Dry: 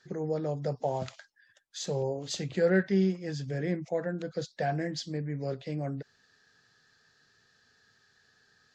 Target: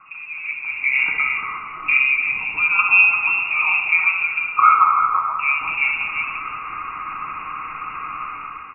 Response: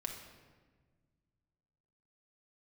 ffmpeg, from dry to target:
-filter_complex "[0:a]aeval=exprs='val(0)+0.5*0.00794*sgn(val(0))':c=same,asettb=1/sr,asplit=3[a][b][c];[a]atrim=end=1.964[d];[b]atrim=start=1.96:end=2.79,asetpts=PTS-STARTPTS,afade=t=in:d=0.004:c=qsin,afade=t=out:st=0.826:d=0.004:c=qsin,acompressor=threshold=-37dB:ratio=2[e];[c]atrim=start=2.786[f];[d][e]acrossfade=d=0.004:c1=hsin:c2=qsin[g];[g][f]acrossfade=d=0.004:c1=qsin:c2=hsin,asettb=1/sr,asplit=3[h][i][j];[h]atrim=end=4.464[k];[i]atrim=start=4.46:end=5.39,asetpts=PTS-STARTPTS,afade=t=in:d=0.004:c=qsin,afade=t=out:st=0.926:d=0.004:c=qsin,highpass=f=1.6k:t=q:w=12[l];[j]atrim=start=5.386[m];[k][l]acrossfade=d=0.004:c1=hsin:c2=qsin[n];[n][m]acrossfade=d=0.004:c1=qsin:c2=hsin,lowpass=f=2.5k:t=q:w=0.5098,lowpass=f=2.5k:t=q:w=0.6013,lowpass=f=2.5k:t=q:w=0.9,lowpass=f=2.5k:t=q:w=2.563,afreqshift=-2900,aecho=1:1:0.9:0.68,aecho=1:1:60|343:0.376|0.447[o];[1:a]atrim=start_sample=2205,asetrate=31752,aresample=44100[p];[o][p]afir=irnorm=-1:irlink=0,dynaudnorm=f=160:g=9:m=15.5dB,asettb=1/sr,asplit=3[q][r][s];[q]atrim=end=0.514[t];[r]atrim=start=0.51:end=0.95,asetpts=PTS-STARTPTS,afade=t=in:d=0.004:c=qsin,afade=t=out:st=0.436:d=0.004:c=qsin,highshelf=f=2.3k:g=-9.5[u];[s]atrim=start=0.946[v];[t][u]acrossfade=d=0.004:c1=hsin:c2=qsin[w];[w][v]acrossfade=d=0.004:c1=qsin:c2=hsin,volume=-1dB"

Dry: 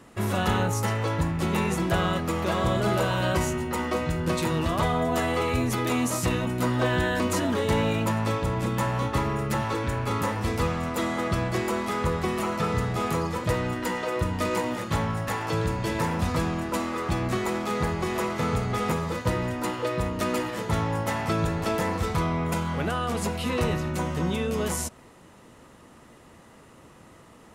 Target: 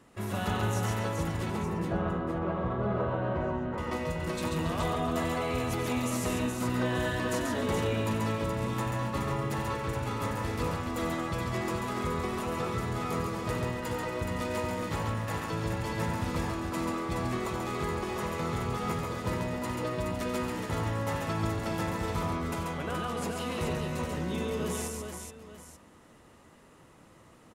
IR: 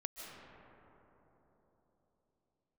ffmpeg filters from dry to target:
-filter_complex "[0:a]asettb=1/sr,asplit=3[a][b][c];[a]atrim=end=1.504[d];[b]atrim=start=1.5:end=3.78,asetpts=PTS-STARTPTS,afade=t=in:d=0.004:c=qsin,afade=t=out:st=2.276:d=0.004:c=qsin,lowpass=1.3k[e];[c]atrim=start=3.776[f];[d][e]acrossfade=d=0.004:c1=hsin:c2=qsin[g];[g][f]acrossfade=d=0.004:c1=qsin:c2=hsin,aecho=1:1:92|137|279|423|883:0.299|0.668|0.15|0.562|0.211,volume=-8dB"

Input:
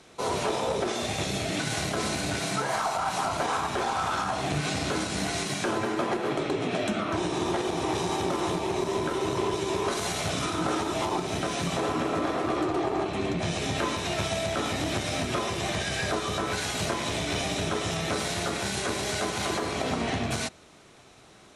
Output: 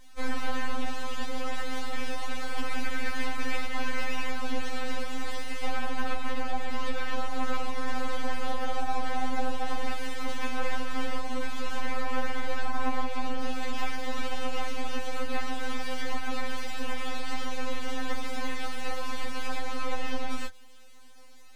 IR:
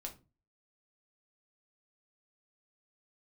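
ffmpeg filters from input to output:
-filter_complex "[0:a]acrossover=split=2900[a][b];[b]acompressor=threshold=-49dB:ratio=4:attack=1:release=60[c];[a][c]amix=inputs=2:normalize=0,aeval=exprs='abs(val(0))':c=same,afftfilt=real='re*3.46*eq(mod(b,12),0)':imag='im*3.46*eq(mod(b,12),0)':win_size=2048:overlap=0.75,volume=1dB"

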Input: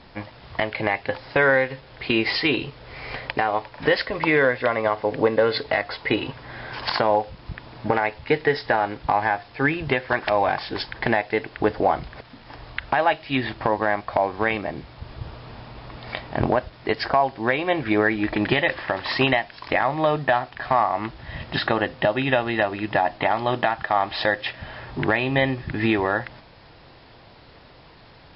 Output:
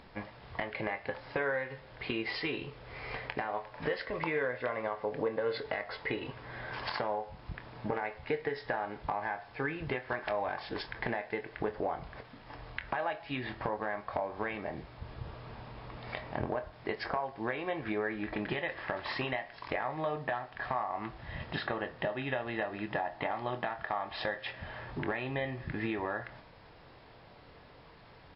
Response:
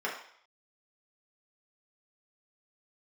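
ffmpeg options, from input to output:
-filter_complex "[0:a]acompressor=threshold=-26dB:ratio=3,lowpass=f=3.2k:p=1,asplit=2[a][b];[1:a]atrim=start_sample=2205[c];[b][c]afir=irnorm=-1:irlink=0,volume=-15.5dB[d];[a][d]amix=inputs=2:normalize=0,acompressor=mode=upward:threshold=-49dB:ratio=2.5,asplit=2[e][f];[f]adelay=24,volume=-11dB[g];[e][g]amix=inputs=2:normalize=0,volume=-7.5dB"

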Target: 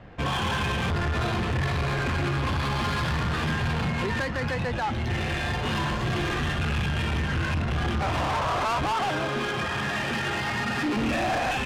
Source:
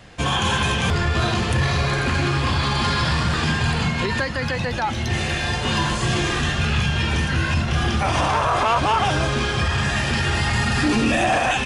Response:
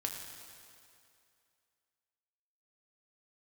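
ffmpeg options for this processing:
-filter_complex "[0:a]asettb=1/sr,asplit=3[a][b][c];[a]atrim=end=8.924[d];[b]atrim=start=8.92:end=10.97,asetpts=PTS-STARTPTS,afade=t=in:d=0.004:c=qsin,afade=t=out:st=2.046:d=0.004:c=qsin,highpass=180[e];[c]atrim=start=10.966[f];[d][e]acrossfade=d=0.004:c1=hsin:c2=qsin[g];[g][f]acrossfade=d=0.004:c1=qsin:c2=hsin,asoftclip=type=tanh:threshold=-22.5dB,adynamicsmooth=sensitivity=2.5:basefreq=1.7k"

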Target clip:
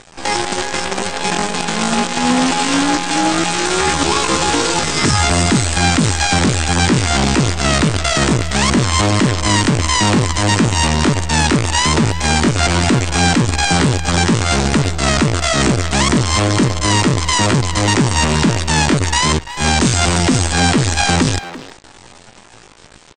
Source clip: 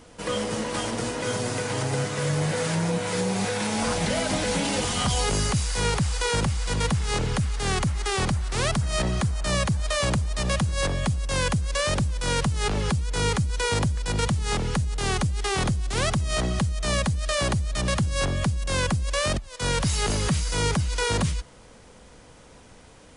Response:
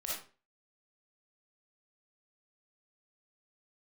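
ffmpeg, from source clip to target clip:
-filter_complex "[0:a]acontrast=37,aresample=11025,acrusher=bits=4:dc=4:mix=0:aa=0.000001,aresample=44100,asetrate=74167,aresample=44100,atempo=0.594604,asplit=2[a][b];[b]adelay=340,highpass=300,lowpass=3.4k,asoftclip=type=hard:threshold=-17dB,volume=-11dB[c];[a][c]amix=inputs=2:normalize=0,volume=4.5dB"

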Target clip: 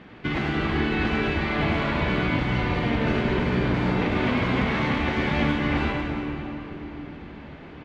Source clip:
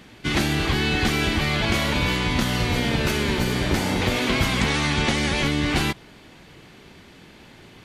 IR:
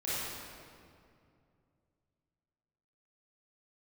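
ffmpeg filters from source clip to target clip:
-filter_complex "[0:a]lowpass=2.2k,lowshelf=f=83:g=-5.5,alimiter=limit=-19dB:level=0:latency=1:release=342,asplit=2[a][b];[b]adelay=100,highpass=300,lowpass=3.4k,asoftclip=type=hard:threshold=-27.5dB,volume=-8dB[c];[a][c]amix=inputs=2:normalize=0,asplit=2[d][e];[1:a]atrim=start_sample=2205,asetrate=23373,aresample=44100,lowpass=8.9k[f];[e][f]afir=irnorm=-1:irlink=0,volume=-9.5dB[g];[d][g]amix=inputs=2:normalize=0"

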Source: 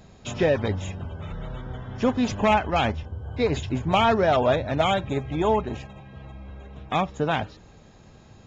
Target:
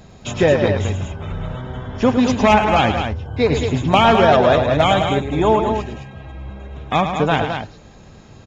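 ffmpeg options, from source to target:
-af "aeval=exprs='0.299*(cos(1*acos(clip(val(0)/0.299,-1,1)))-cos(1*PI/2))+0.00944*(cos(3*acos(clip(val(0)/0.299,-1,1)))-cos(3*PI/2))':c=same,aecho=1:1:107.9|212.8:0.398|0.447,volume=7dB"

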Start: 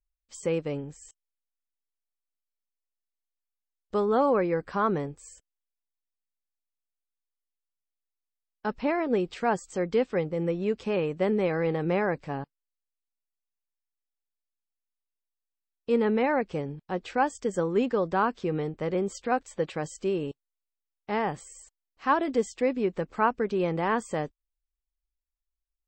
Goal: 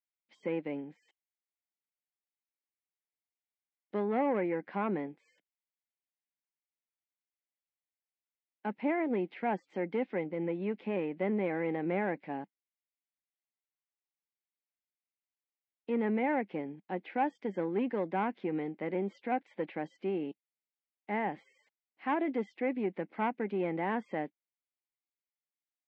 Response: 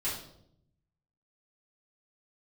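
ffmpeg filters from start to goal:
-filter_complex "[0:a]aeval=exprs='(tanh(7.94*val(0)+0.3)-tanh(0.3))/7.94':c=same,highpass=f=190:w=0.5412,highpass=f=190:w=1.3066,equalizer=f=200:t=q:w=4:g=4,equalizer=f=310:t=q:w=4:g=5,equalizer=f=450:t=q:w=4:g=-3,equalizer=f=800:t=q:w=4:g=4,equalizer=f=1.2k:t=q:w=4:g=-9,equalizer=f=2.1k:t=q:w=4:g=9,lowpass=f=3.4k:w=0.5412,lowpass=f=3.4k:w=1.3066,acrossover=split=2600[a][b];[b]acompressor=threshold=-55dB:ratio=4:attack=1:release=60[c];[a][c]amix=inputs=2:normalize=0,volume=-5dB"

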